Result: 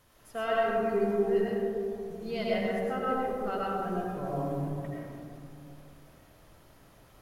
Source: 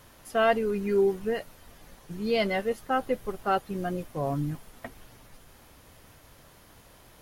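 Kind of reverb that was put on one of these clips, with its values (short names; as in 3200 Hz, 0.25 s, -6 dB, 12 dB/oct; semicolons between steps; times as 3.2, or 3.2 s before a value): digital reverb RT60 2.8 s, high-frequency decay 0.25×, pre-delay 60 ms, DRR -6 dB; gain -10.5 dB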